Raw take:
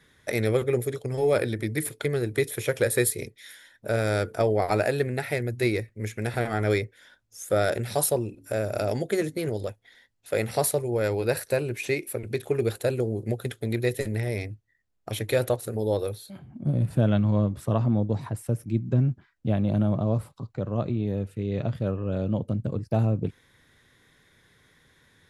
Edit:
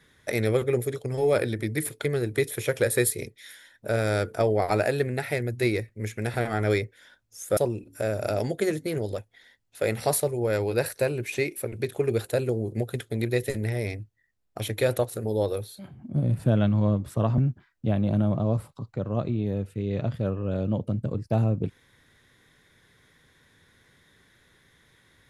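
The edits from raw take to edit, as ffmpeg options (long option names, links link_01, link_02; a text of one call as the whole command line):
ffmpeg -i in.wav -filter_complex "[0:a]asplit=3[link_01][link_02][link_03];[link_01]atrim=end=7.572[link_04];[link_02]atrim=start=8.078:end=17.892[link_05];[link_03]atrim=start=18.988[link_06];[link_04][link_05]acrossfade=duration=0.004:curve1=hsin:curve2=hsin[link_07];[link_07][link_06]acrossfade=duration=0.004:curve1=hsin:curve2=hsin" out.wav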